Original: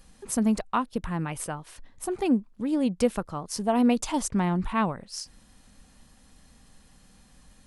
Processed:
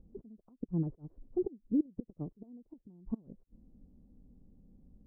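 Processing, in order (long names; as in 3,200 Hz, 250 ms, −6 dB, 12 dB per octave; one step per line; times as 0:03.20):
gate with flip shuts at −19 dBFS, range −30 dB
phase-vocoder stretch with locked phases 0.66×
transistor ladder low-pass 450 Hz, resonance 30%
level +5 dB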